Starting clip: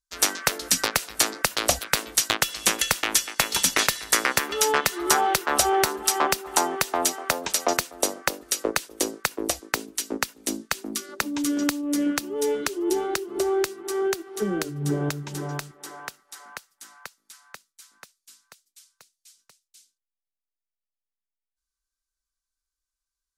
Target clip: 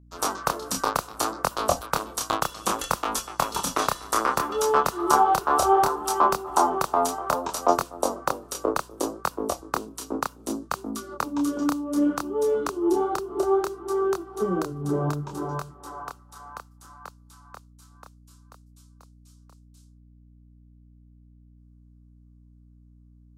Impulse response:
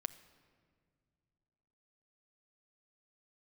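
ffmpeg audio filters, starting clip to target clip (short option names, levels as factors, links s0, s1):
-af "highshelf=f=1500:t=q:w=3:g=-8.5,flanger=delay=22.5:depth=7.8:speed=0.64,aeval=exprs='val(0)+0.00178*(sin(2*PI*60*n/s)+sin(2*PI*2*60*n/s)/2+sin(2*PI*3*60*n/s)/3+sin(2*PI*4*60*n/s)/4+sin(2*PI*5*60*n/s)/5)':c=same,volume=1.5"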